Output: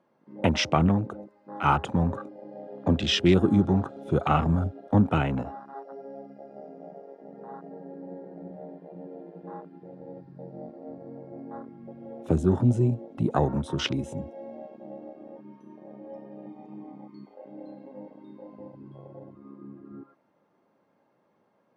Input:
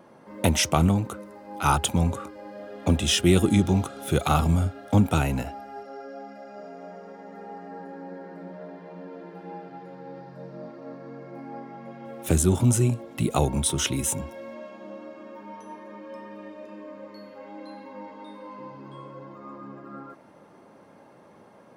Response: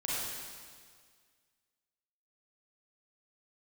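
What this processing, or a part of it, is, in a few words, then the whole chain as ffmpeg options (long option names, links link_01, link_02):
over-cleaned archive recording: -filter_complex "[0:a]highpass=100,lowpass=5400,afwtdn=0.0224,asettb=1/sr,asplit=3[link_01][link_02][link_03];[link_01]atrim=end=16.464[link_04];[link_02]atrim=start=16.46:end=17.35,asetpts=PTS-STARTPTS,afade=type=in:duration=0.004:curve=qsin,afade=type=out:start_time=0.886:duration=0.004:curve=qsin,aecho=1:1:0.9:0.83,atrim=end_sample=39249[link_05];[link_03]atrim=start=17.346[link_06];[link_04][link_05]acrossfade=duration=0.004:curve1=hsin:curve2=qsin[link_07];[link_07][link_06]acrossfade=duration=0.004:curve1=qsin:curve2=hsin"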